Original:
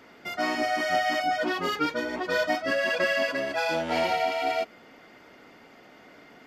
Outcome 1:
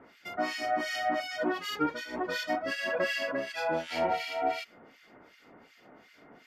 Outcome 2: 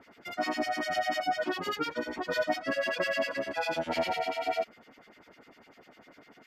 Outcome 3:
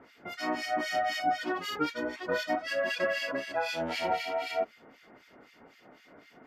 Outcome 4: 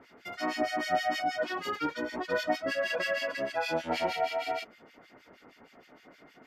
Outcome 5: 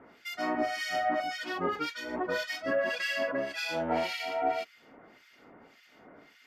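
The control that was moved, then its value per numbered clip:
two-band tremolo in antiphase, speed: 2.7, 10, 3.9, 6.4, 1.8 Hertz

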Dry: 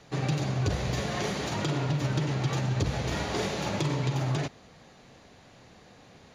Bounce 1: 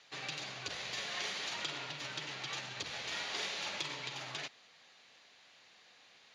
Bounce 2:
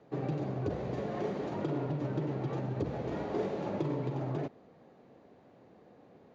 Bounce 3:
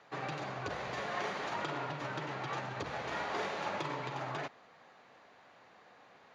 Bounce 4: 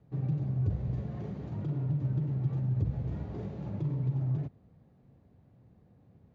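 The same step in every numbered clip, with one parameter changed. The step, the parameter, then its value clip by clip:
resonant band-pass, frequency: 3,300, 380, 1,200, 100 Hertz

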